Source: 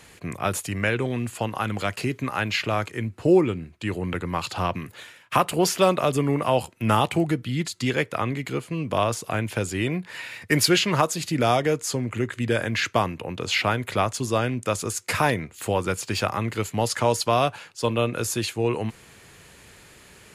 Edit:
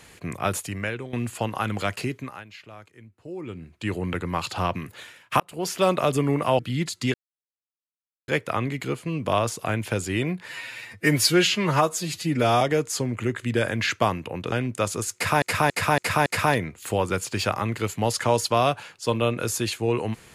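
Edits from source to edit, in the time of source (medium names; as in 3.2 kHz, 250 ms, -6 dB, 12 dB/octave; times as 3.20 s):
0.50–1.13 s: fade out linear, to -13.5 dB
1.95–3.86 s: dip -19.5 dB, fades 0.49 s
5.40–5.96 s: fade in linear
6.59–7.38 s: delete
7.93 s: insert silence 1.14 s
10.13–11.55 s: stretch 1.5×
13.46–14.40 s: delete
15.02–15.30 s: loop, 5 plays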